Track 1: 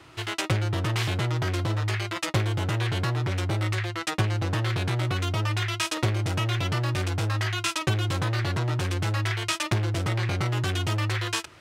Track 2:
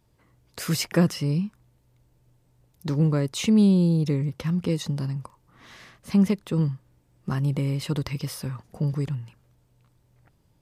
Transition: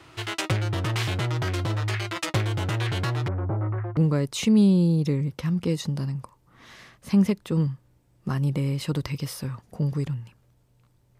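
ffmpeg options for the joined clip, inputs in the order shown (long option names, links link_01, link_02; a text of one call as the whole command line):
ffmpeg -i cue0.wav -i cue1.wav -filter_complex "[0:a]asettb=1/sr,asplit=3[link_01][link_02][link_03];[link_01]atrim=end=3.284[link_04];[link_02]atrim=start=3.28:end=3.97,asetpts=PTS-STARTPTS,afade=type=in:duration=0.004:curve=qsin,afade=type=out:start_time=0.686:duration=0.004:curve=qsin,lowpass=frequency=1200:width=0.5412,lowpass=frequency=1200:width=1.3066[link_05];[link_03]atrim=start=3.966[link_06];[link_04][link_05]acrossfade=duration=0.004:curve1=hsin:curve2=qsin[link_07];[link_07][link_06]acrossfade=duration=0.004:curve1=qsin:curve2=hsin,apad=whole_dur=11.19,atrim=end=11.19,atrim=end=3.972[link_08];[1:a]atrim=start=2.978:end=10.2[link_09];[link_08][link_09]acrossfade=duration=0.004:curve1=hsin:curve2=hsin" out.wav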